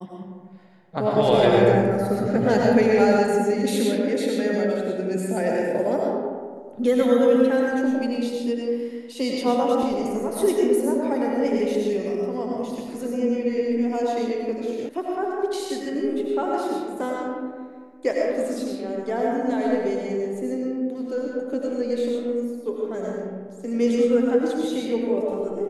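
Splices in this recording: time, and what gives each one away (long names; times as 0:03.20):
0:14.89: cut off before it has died away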